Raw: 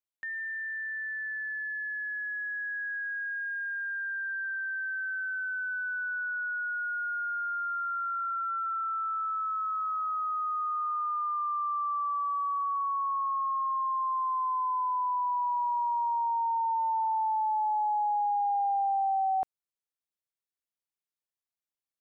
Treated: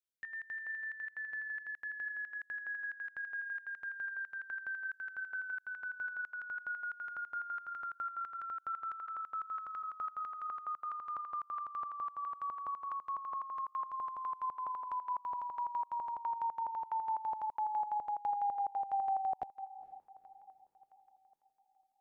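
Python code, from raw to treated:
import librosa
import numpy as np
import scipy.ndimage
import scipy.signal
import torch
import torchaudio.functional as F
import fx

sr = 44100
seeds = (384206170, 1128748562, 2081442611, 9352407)

y = fx.steep_highpass(x, sr, hz=500.0, slope=72, at=(9.06, 9.82), fade=0.02)
y = fx.echo_diffused(y, sr, ms=465, feedback_pct=49, wet_db=-15.5)
y = fx.filter_held_notch(y, sr, hz=12.0, low_hz=770.0, high_hz=1700.0)
y = y * 10.0 ** (-3.0 / 20.0)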